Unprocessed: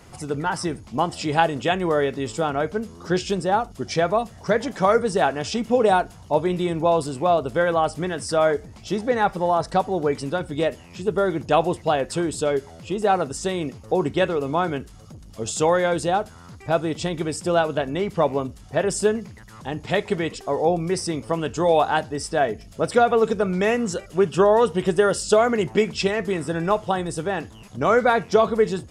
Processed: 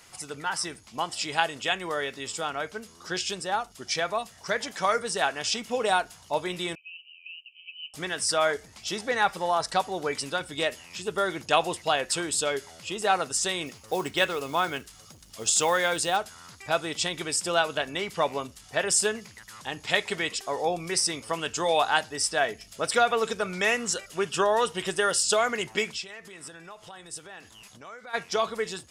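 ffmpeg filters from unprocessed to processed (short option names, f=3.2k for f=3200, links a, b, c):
-filter_complex "[0:a]asettb=1/sr,asplit=3[a][b][c];[a]atrim=end=6.754[d];[b]atrim=start=6.75:end=7.94,asetpts=PTS-STARTPTS,afade=t=in:d=0.004:c=qsin,afade=t=out:st=1.186:d=0.004:c=qsin,asuperpass=centerf=2700:order=20:qfactor=3.7[e];[c]atrim=start=7.936[f];[d][e]acrossfade=d=0.004:c1=hsin:c2=qsin[g];[g][f]acrossfade=d=0.004:c1=qsin:c2=hsin,asettb=1/sr,asplit=3[h][i][j];[h]atrim=end=13.664[k];[i]atrim=start=13.66:end=16.17,asetpts=PTS-STARTPTS,afade=t=in:d=0.004:c=qsin,afade=t=out:st=2.506:d=0.004:c=qsin,acrusher=bits=9:mode=log:mix=0:aa=0.000001[l];[j]atrim=start=16.166[m];[k][l]acrossfade=d=0.004:c1=hsin:c2=qsin[n];[n][m]acrossfade=d=0.004:c1=qsin:c2=hsin,asplit=3[o][p][q];[o]afade=t=out:st=25.91:d=0.02[r];[p]acompressor=threshold=-32dB:ratio=12:attack=3.2:release=140:knee=1:detection=peak,afade=t=in:st=25.91:d=0.02,afade=t=out:st=28.13:d=0.02[s];[q]afade=t=in:st=28.13:d=0.02[t];[r][s][t]amix=inputs=3:normalize=0,tiltshelf=f=970:g=-9,dynaudnorm=f=280:g=31:m=11.5dB,lowshelf=f=140:g=-3,volume=-6dB"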